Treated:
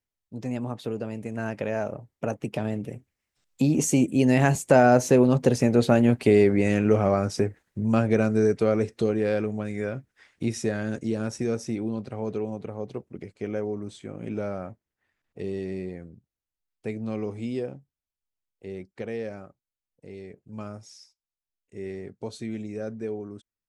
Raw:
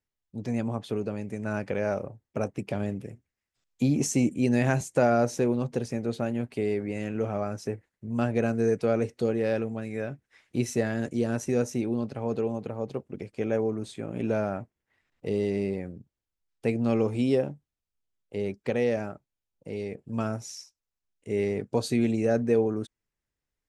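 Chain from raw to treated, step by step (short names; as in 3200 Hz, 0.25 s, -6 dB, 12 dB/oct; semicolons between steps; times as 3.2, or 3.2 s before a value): Doppler pass-by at 6.15, 19 m/s, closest 18 m; in parallel at +1 dB: compressor, threshold -41 dBFS, peak gain reduction 17 dB; on the sum: gain +9 dB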